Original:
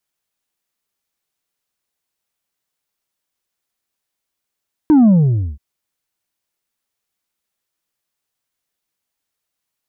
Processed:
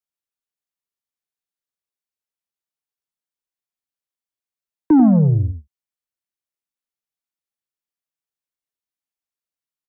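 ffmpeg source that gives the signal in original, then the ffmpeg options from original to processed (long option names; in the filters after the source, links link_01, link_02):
-f lavfi -i "aevalsrc='0.447*clip((0.68-t)/0.51,0,1)*tanh(1.5*sin(2*PI*320*0.68/log(65/320)*(exp(log(65/320)*t/0.68)-1)))/tanh(1.5)':duration=0.68:sample_rate=44100"
-filter_complex "[0:a]agate=range=-15dB:threshold=-23dB:ratio=16:detection=peak,acrossover=split=150|230|520[link_01][link_02][link_03][link_04];[link_02]asoftclip=type=tanh:threshold=-22dB[link_05];[link_01][link_05][link_03][link_04]amix=inputs=4:normalize=0,aecho=1:1:91:0.376"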